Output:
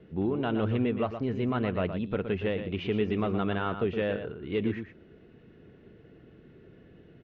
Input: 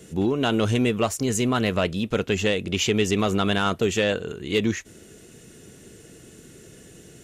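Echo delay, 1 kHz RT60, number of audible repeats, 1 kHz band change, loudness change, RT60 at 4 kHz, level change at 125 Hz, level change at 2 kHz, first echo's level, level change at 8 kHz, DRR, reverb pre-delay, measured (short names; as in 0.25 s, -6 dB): 0.118 s, none, 1, -7.0 dB, -6.5 dB, none, -5.5 dB, -10.0 dB, -9.0 dB, under -40 dB, none, none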